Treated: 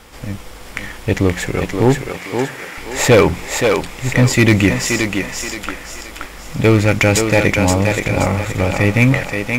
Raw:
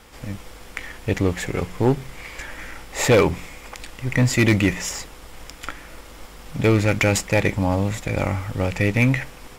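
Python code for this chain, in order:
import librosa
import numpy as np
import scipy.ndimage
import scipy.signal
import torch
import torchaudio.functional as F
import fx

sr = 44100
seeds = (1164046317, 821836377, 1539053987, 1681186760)

p1 = fx.bessel_highpass(x, sr, hz=230.0, order=2, at=(2.09, 2.78))
p2 = p1 + fx.echo_thinned(p1, sr, ms=525, feedback_pct=40, hz=290.0, wet_db=-3.5, dry=0)
y = F.gain(torch.from_numpy(p2), 5.5).numpy()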